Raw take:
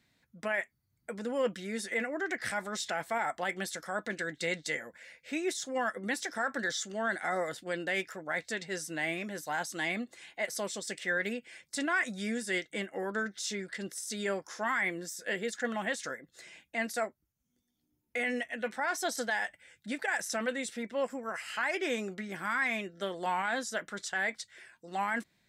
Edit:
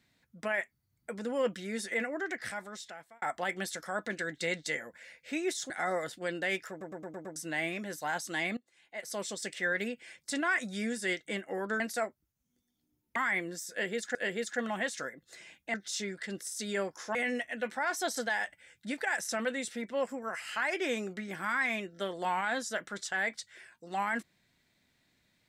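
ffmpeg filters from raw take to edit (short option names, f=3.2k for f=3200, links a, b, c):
-filter_complex "[0:a]asplit=15[a][b][c][d][e][f][g][h][i][j][k][l][m][n][o];[a]atrim=end=3.22,asetpts=PTS-STARTPTS,afade=t=out:st=2.05:d=1.17[p];[b]atrim=start=3.22:end=5.702,asetpts=PTS-STARTPTS,afade=t=in:d=0.004:c=hsin[q];[c]atrim=start=7.148:end=8.262[r];[d]atrim=start=8.148:end=8.262[s];[e]atrim=start=8.148:end=8.262[t];[f]atrim=start=8.148:end=8.262[u];[g]atrim=start=8.148:end=8.262[v];[h]atrim=start=8.148:end=8.262[w];[i]atrim=start=8.808:end=10.02,asetpts=PTS-STARTPTS,afade=t=out:st=1.208:d=0.004:c=hsin:silence=0.0944061[x];[j]atrim=start=10.02:end=13.252,asetpts=PTS-STARTPTS,afade=t=in:d=0.67:c=qua:silence=0.0944061[y];[k]atrim=start=16.798:end=18.162[z];[l]atrim=start=14.658:end=15.652[aa];[m]atrim=start=15.208:end=16.802[ab];[n]atrim=start=13.248:end=14.662[ac];[o]atrim=start=18.158[ad];[p][q]concat=n=2:v=0:a=1[ae];[ae][r]acrossfade=d=0.004:c1=hsin:c2=hsin[af];[af][s]acrossfade=d=0.004:c1=hsin:c2=hsin[ag];[ag][t]acrossfade=d=0.004:c1=hsin:c2=hsin[ah];[ah][u]acrossfade=d=0.004:c1=hsin:c2=hsin[ai];[ai][v]acrossfade=d=0.004:c1=hsin:c2=hsin[aj];[aj][w]acrossfade=d=0.004:c1=hsin:c2=hsin[ak];[x][y]concat=n=2:v=0:a=1[al];[ak][al]acrossfade=d=0.004:c1=hsin:c2=hsin[am];[am][z]acrossfade=d=0.004:c1=hsin:c2=hsin[an];[an][aa]acrossfade=d=0.004:c1=hsin:c2=hsin[ao];[ao][ab]acrossfade=d=0.004:c1=hsin:c2=hsin[ap];[ap][ac]acrossfade=d=0.004:c1=hsin:c2=hsin[aq];[aq][ad]acrossfade=d=0.004:c1=hsin:c2=hsin"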